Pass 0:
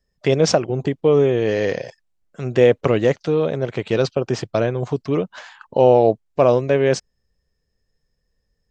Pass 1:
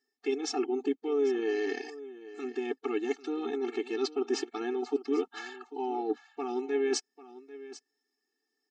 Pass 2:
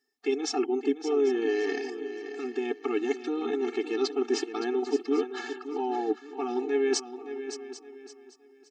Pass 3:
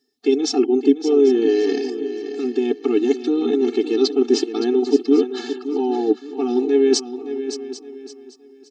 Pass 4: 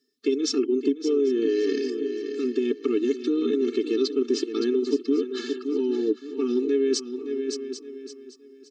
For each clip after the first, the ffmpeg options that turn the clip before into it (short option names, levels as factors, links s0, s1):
-af "areverse,acompressor=threshold=0.0794:ratio=16,areverse,aecho=1:1:794:0.15,afftfilt=real='re*eq(mod(floor(b*sr/1024/230),2),1)':imag='im*eq(mod(floor(b*sr/1024/230),2),1)':win_size=1024:overlap=0.75"
-af "aecho=1:1:567|1134|1701:0.282|0.0846|0.0254,volume=1.41"
-af "equalizer=f=125:t=o:w=1:g=10,equalizer=f=250:t=o:w=1:g=7,equalizer=f=500:t=o:w=1:g=4,equalizer=f=1000:t=o:w=1:g=-5,equalizer=f=2000:t=o:w=1:g=-6,equalizer=f=4000:t=o:w=1:g=8,volume=1.68"
-af "highpass=96,acompressor=threshold=0.141:ratio=4,asuperstop=centerf=770:order=4:qfactor=1.8,volume=0.75"